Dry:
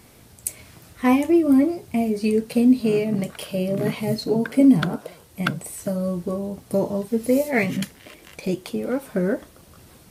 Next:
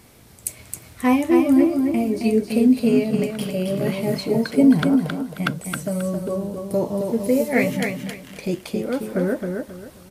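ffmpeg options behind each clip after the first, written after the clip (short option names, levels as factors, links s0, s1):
-af "aecho=1:1:268|536|804|1072:0.562|0.152|0.041|0.0111"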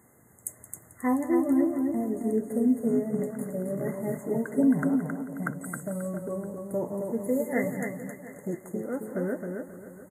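-af "highpass=110,afftfilt=real='re*(1-between(b*sr/4096,2100,6400))':imag='im*(1-between(b*sr/4096,2100,6400))':win_size=4096:overlap=0.75,aecho=1:1:173|699:0.178|0.126,volume=0.398"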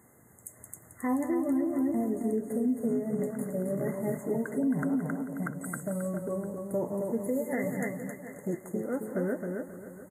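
-af "alimiter=limit=0.0891:level=0:latency=1:release=112"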